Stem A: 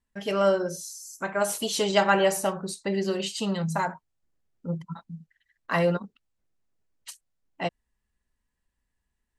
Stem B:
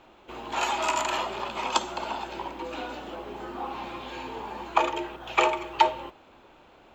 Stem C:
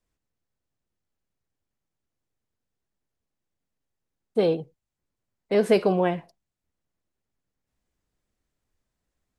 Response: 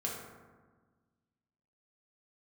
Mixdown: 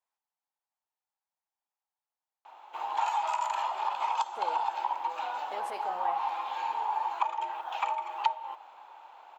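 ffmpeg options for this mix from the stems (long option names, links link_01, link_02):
-filter_complex "[1:a]acompressor=threshold=-32dB:ratio=16,adelay=2450,volume=-3.5dB[link_01];[2:a]alimiter=limit=-19dB:level=0:latency=1:release=79,volume=-9dB[link_02];[link_01][link_02]amix=inputs=2:normalize=0,highpass=frequency=860:width_type=q:width=5.2"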